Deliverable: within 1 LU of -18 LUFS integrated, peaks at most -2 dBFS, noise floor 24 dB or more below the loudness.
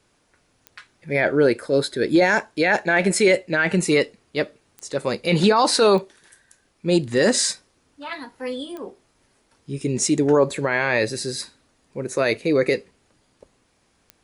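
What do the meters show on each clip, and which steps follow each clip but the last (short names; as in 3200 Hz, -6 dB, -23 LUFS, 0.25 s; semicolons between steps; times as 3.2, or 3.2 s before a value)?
clicks 5; loudness -20.5 LUFS; peak -5.5 dBFS; loudness target -18.0 LUFS
-> de-click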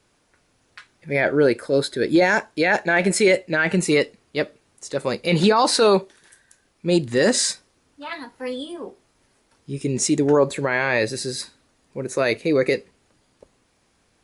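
clicks 0; loudness -20.5 LUFS; peak -5.5 dBFS; loudness target -18.0 LUFS
-> gain +2.5 dB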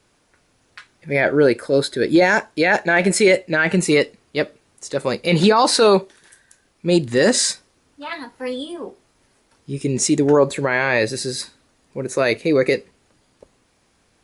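loudness -18.0 LUFS; peak -3.0 dBFS; noise floor -62 dBFS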